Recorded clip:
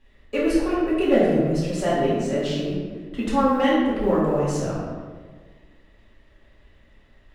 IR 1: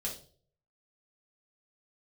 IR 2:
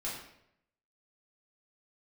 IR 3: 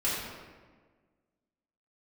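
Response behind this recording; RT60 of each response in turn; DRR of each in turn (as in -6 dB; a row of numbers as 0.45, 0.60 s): 3; 0.50, 0.75, 1.5 s; -3.5, -6.5, -9.0 dB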